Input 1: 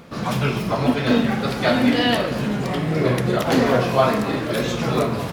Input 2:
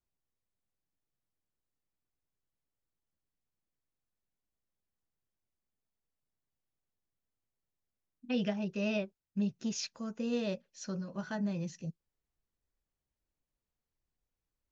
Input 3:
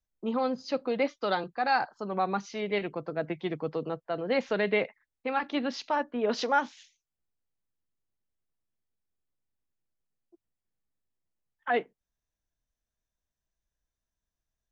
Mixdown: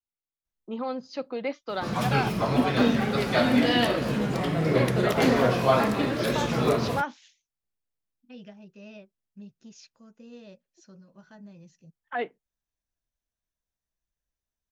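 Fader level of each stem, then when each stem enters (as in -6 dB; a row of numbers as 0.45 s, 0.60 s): -4.0 dB, -13.0 dB, -3.0 dB; 1.70 s, 0.00 s, 0.45 s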